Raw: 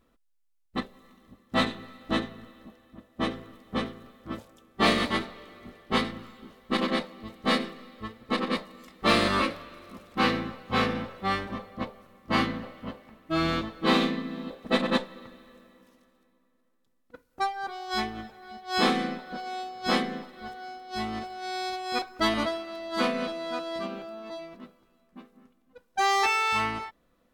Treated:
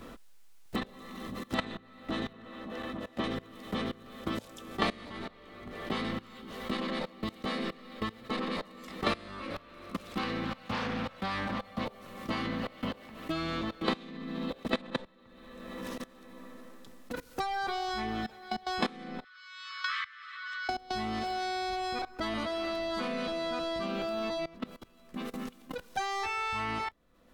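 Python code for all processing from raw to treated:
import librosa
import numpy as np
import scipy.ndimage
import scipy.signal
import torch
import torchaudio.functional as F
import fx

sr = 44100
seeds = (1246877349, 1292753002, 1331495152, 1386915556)

y = fx.chain(x, sr, fx.lowpass(hz=2300.0, slope=6),
    fx.low_shelf(hz=180.0, db=-8.5), at=(2.33, 3.24))
y = fx.chain(y, sr, fx.peak_eq(hz=400.0, db=-13.5, octaves=0.31),
    fx.doppler_dist(depth_ms=0.46), at=(10.44, 11.81))
y = fx.chain(y, sr, fx.brickwall_bandpass(low_hz=1100.0, high_hz=8600.0),
    fx.air_absorb(metres=80.0), at=(19.24, 20.69))
y = fx.level_steps(y, sr, step_db=21)
y = fx.high_shelf(y, sr, hz=9700.0, db=-5.5)
y = fx.band_squash(y, sr, depth_pct=100)
y = F.gain(torch.from_numpy(y), 8.0).numpy()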